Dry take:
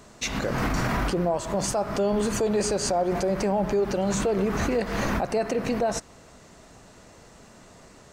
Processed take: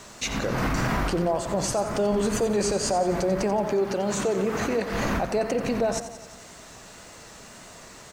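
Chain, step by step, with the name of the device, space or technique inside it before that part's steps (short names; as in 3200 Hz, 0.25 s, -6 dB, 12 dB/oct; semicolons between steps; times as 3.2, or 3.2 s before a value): 3.6–4.92 HPF 180 Hz 6 dB/oct; feedback echo 89 ms, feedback 58%, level -11.5 dB; noise-reduction cassette on a plain deck (mismatched tape noise reduction encoder only; wow and flutter; white noise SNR 40 dB)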